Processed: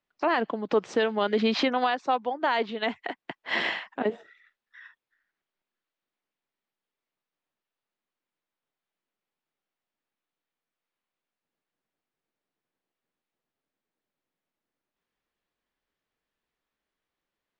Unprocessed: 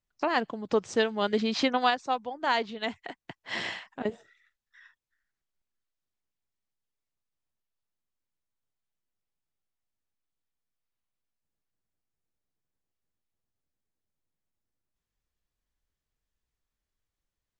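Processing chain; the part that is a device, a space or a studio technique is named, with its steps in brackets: DJ mixer with the lows and highs turned down (three-band isolator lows -19 dB, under 190 Hz, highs -17 dB, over 4000 Hz; limiter -21.5 dBFS, peak gain reduction 10.5 dB); gain +7 dB

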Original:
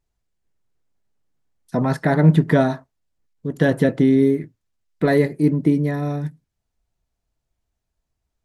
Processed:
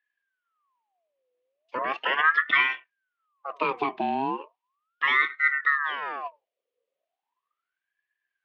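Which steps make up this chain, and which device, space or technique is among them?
voice changer toy (ring modulator with a swept carrier 1100 Hz, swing 55%, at 0.37 Hz; speaker cabinet 490–3600 Hz, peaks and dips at 580 Hz -7 dB, 850 Hz -9 dB, 1400 Hz -10 dB, 2900 Hz +3 dB)

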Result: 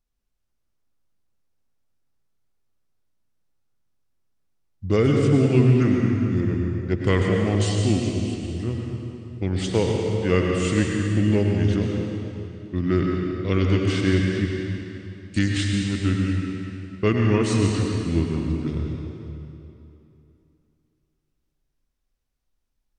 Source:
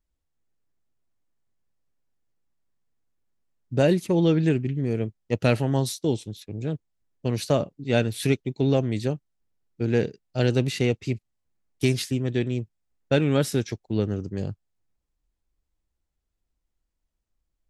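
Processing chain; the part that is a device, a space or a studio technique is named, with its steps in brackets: slowed and reverbed (varispeed -23%; reverb RT60 2.9 s, pre-delay 93 ms, DRR 0 dB)

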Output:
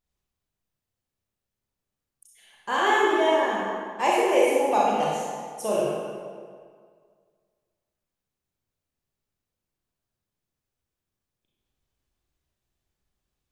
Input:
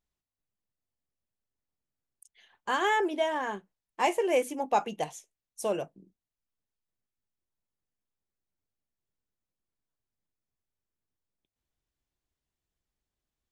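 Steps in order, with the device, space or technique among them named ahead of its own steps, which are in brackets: stairwell (reverb RT60 1.9 s, pre-delay 29 ms, DRR -5.5 dB)

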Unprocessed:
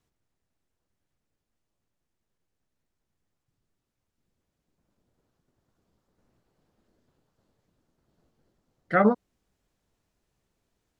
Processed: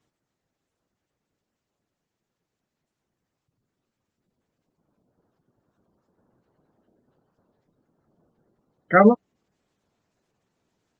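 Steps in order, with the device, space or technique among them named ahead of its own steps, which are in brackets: noise-suppressed video call (HPF 120 Hz 12 dB/oct; spectral gate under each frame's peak -20 dB strong; gain +6.5 dB; Opus 16 kbps 48000 Hz)

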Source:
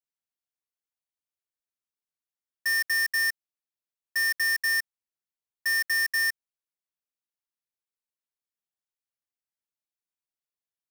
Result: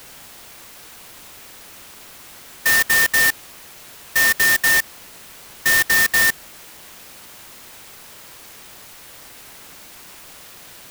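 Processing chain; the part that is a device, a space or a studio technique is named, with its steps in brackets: early CD player with a faulty converter (zero-crossing step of -39 dBFS; clock jitter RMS 0.047 ms); gain +9 dB

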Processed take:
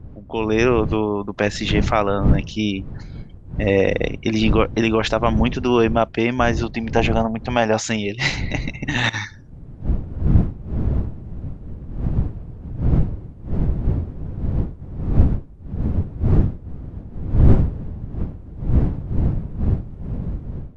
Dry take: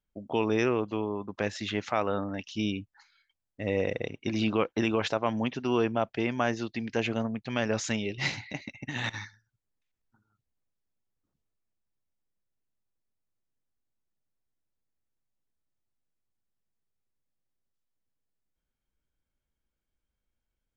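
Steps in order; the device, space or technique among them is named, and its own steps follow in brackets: 6.63–7.83 bell 790 Hz +11 dB 0.72 oct; smartphone video outdoors (wind noise 120 Hz -32 dBFS; AGC gain up to 13 dB; AAC 96 kbps 24000 Hz)

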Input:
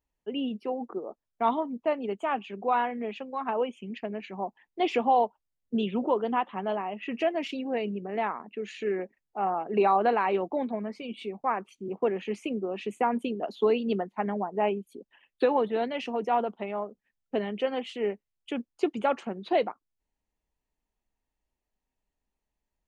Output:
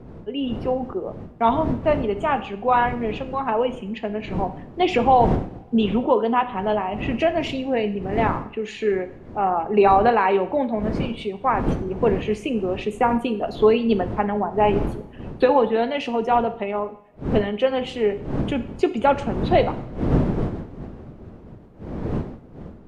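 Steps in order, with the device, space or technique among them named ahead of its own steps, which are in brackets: two-slope reverb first 0.55 s, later 1.8 s, from -20 dB, DRR 9 dB; smartphone video outdoors (wind noise 280 Hz -37 dBFS; AGC gain up to 4.5 dB; gain +2.5 dB; AAC 96 kbps 32000 Hz)

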